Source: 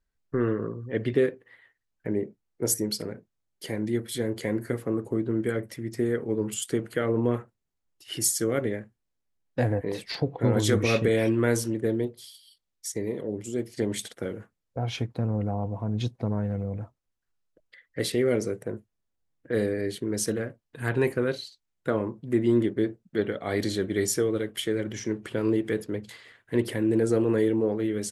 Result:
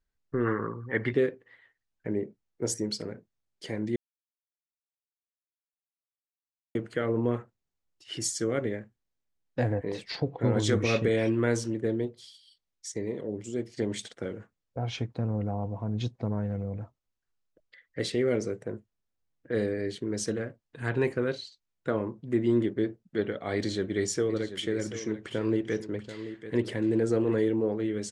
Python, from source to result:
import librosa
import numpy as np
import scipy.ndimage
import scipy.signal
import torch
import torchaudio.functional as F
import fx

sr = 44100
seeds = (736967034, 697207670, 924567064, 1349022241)

y = fx.spec_box(x, sr, start_s=0.46, length_s=0.66, low_hz=740.0, high_hz=2300.0, gain_db=11)
y = fx.echo_single(y, sr, ms=735, db=-12.0, at=(23.56, 27.4))
y = fx.edit(y, sr, fx.silence(start_s=3.96, length_s=2.79), tone=tone)
y = scipy.signal.sosfilt(scipy.signal.butter(4, 7700.0, 'lowpass', fs=sr, output='sos'), y)
y = y * librosa.db_to_amplitude(-2.5)